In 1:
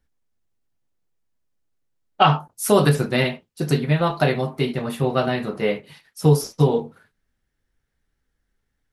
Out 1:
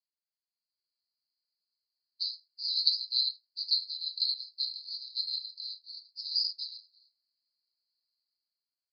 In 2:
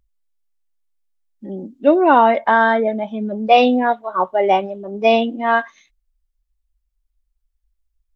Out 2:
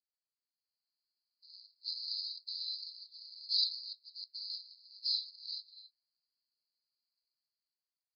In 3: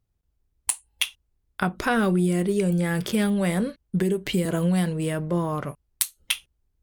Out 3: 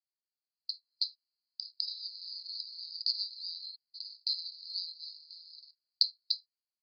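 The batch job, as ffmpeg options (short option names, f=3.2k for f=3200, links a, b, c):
-af "acrusher=bits=7:mode=log:mix=0:aa=0.000001,asuperpass=centerf=4500:order=12:qfactor=4.8,dynaudnorm=f=170:g=9:m=13.5dB"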